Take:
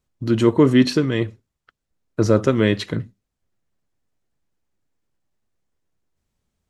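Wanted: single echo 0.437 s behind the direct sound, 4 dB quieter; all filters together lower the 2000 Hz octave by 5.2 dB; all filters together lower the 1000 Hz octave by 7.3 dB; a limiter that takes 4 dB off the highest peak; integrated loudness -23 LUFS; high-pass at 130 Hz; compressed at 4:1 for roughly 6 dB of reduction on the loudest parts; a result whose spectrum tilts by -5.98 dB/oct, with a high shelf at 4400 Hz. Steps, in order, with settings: HPF 130 Hz; bell 1000 Hz -8 dB; bell 2000 Hz -5 dB; high shelf 4400 Hz +5.5 dB; compressor 4:1, threshold -17 dBFS; limiter -12.5 dBFS; echo 0.437 s -4 dB; gain +2 dB

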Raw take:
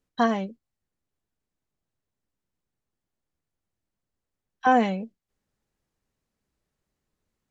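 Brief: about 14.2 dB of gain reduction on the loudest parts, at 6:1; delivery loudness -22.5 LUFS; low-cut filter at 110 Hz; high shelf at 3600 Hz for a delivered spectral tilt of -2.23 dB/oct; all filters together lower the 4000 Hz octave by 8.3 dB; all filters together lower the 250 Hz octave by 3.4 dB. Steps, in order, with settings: HPF 110 Hz; bell 250 Hz -3.5 dB; high shelf 3600 Hz -6 dB; bell 4000 Hz -8.5 dB; compressor 6:1, threshold -31 dBFS; gain +15 dB

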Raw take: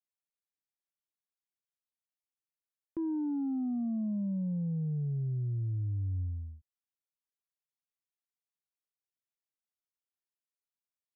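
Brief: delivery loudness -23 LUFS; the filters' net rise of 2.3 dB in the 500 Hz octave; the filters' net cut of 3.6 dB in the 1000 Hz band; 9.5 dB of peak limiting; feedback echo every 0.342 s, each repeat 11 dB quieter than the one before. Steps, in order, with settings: bell 500 Hz +6 dB; bell 1000 Hz -8 dB; limiter -36.5 dBFS; feedback echo 0.342 s, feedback 28%, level -11 dB; gain +17.5 dB

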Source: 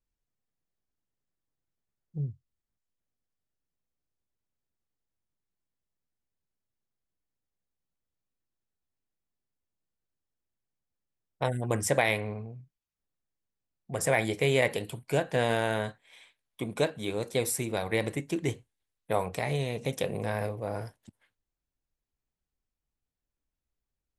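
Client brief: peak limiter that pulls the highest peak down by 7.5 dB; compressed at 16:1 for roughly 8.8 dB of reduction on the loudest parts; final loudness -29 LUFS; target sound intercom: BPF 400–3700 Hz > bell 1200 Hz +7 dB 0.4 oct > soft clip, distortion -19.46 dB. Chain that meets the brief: compressor 16:1, threshold -28 dBFS; limiter -23 dBFS; BPF 400–3700 Hz; bell 1200 Hz +7 dB 0.4 oct; soft clip -26 dBFS; gain +11.5 dB

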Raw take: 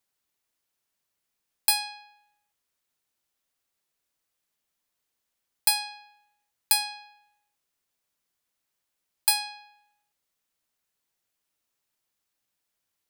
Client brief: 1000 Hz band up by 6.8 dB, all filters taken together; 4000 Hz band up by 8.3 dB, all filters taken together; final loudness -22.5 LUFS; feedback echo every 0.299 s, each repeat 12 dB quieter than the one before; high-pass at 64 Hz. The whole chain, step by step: HPF 64 Hz; bell 1000 Hz +8.5 dB; bell 4000 Hz +9 dB; feedback echo 0.299 s, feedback 25%, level -12 dB; gain -0.5 dB

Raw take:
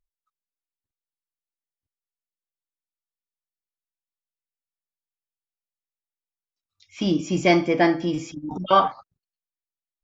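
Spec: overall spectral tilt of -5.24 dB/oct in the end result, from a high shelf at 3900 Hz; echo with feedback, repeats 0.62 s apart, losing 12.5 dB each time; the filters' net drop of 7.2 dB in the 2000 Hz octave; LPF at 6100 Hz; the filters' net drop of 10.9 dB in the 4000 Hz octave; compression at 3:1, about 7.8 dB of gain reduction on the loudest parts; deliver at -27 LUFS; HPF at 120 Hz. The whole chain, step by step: HPF 120 Hz; LPF 6100 Hz; bell 2000 Hz -4.5 dB; high shelf 3900 Hz -7.5 dB; bell 4000 Hz -8.5 dB; compressor 3:1, threshold -24 dBFS; feedback echo 0.62 s, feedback 24%, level -12.5 dB; gain +1.5 dB

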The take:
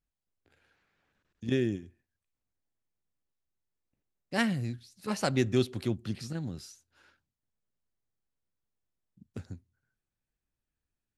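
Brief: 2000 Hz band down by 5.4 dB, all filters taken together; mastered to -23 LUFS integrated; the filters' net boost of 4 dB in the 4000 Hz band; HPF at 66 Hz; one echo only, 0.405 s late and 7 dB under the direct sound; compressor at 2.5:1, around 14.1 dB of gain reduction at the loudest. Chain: HPF 66 Hz; bell 2000 Hz -8.5 dB; bell 4000 Hz +7.5 dB; compressor 2.5:1, threshold -43 dBFS; echo 0.405 s -7 dB; gain +21 dB

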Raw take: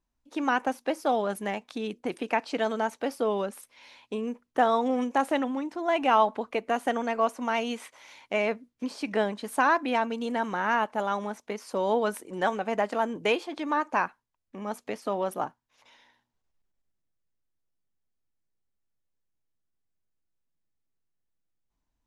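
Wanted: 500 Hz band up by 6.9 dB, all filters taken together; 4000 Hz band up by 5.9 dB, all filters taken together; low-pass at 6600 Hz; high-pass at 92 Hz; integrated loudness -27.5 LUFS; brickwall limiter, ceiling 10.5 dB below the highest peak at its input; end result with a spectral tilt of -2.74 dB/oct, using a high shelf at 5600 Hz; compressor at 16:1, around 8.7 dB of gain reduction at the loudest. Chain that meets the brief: HPF 92 Hz; LPF 6600 Hz; bell 500 Hz +8.5 dB; bell 4000 Hz +7 dB; high shelf 5600 Hz +5 dB; compressor 16:1, threshold -22 dBFS; gain +4.5 dB; limiter -17 dBFS

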